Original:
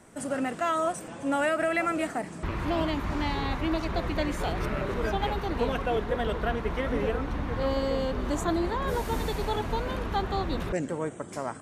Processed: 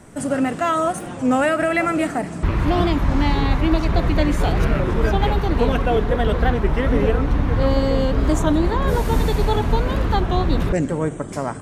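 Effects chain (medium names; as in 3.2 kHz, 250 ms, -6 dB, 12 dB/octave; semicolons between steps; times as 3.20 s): bass shelf 210 Hz +8.5 dB; reverberation RT60 2.1 s, pre-delay 7 ms, DRR 16 dB; warped record 33 1/3 rpm, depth 160 cents; trim +6.5 dB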